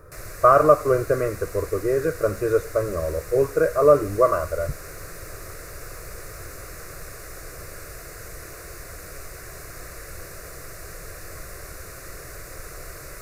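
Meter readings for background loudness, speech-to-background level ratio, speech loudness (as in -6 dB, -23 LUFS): -38.5 LUFS, 17.5 dB, -21.0 LUFS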